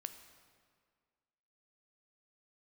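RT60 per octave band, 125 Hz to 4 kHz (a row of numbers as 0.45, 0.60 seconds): 1.8, 1.9, 1.9, 1.9, 1.7, 1.4 seconds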